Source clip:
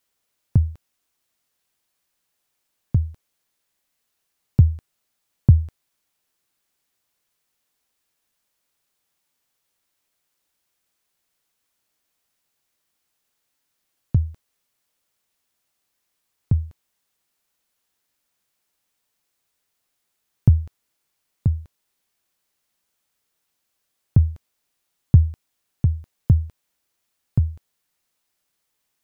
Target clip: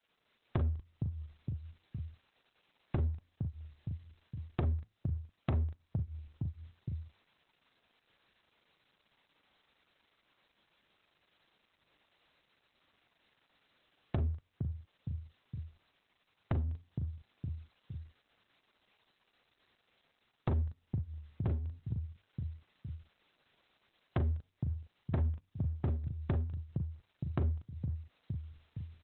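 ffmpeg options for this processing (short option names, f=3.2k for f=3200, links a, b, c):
-filter_complex "[0:a]asettb=1/sr,asplit=3[a][b][c];[a]atrim=end=14.194[d];[b]atrim=start=14.19:end=16.64,asetpts=PTS-STARTPTS,afade=t=in:d=0.004:c=qsin,afade=t=out:st=2.446:d=0.004:c=qsin,aeval=exprs='if(lt(val(0),0),0.708*val(0),val(0))':c=same[e];[c]atrim=start=16.636[f];[d][e]acrossfade=d=0.004:c1=hsin:c2=qsin[g];[g][f]acrossfade=d=0.004:c1=qsin:c2=hsin,highpass=f=49:w=0.5412,highpass=f=49:w=1.3066,asplit=2[h][i];[i]adelay=463,lowpass=f=880:p=1,volume=-20dB,asplit=2[j][k];[k]adelay=463,lowpass=f=880:p=1,volume=0.45,asplit=2[l][m];[m]adelay=463,lowpass=f=880:p=1,volume=0.45[n];[h][j][l][n]amix=inputs=4:normalize=0,dynaudnorm=f=190:g=3:m=5dB,asoftclip=type=hard:threshold=-19.5dB,flanger=delay=4.4:depth=2.3:regen=-89:speed=0.4:shape=triangular,asplit=2[o][p];[p]adelay=39,volume=-2dB[q];[o][q]amix=inputs=2:normalize=0,acompressor=threshold=-45dB:ratio=3,volume=9dB" -ar 48000 -c:a libopus -b:a 8k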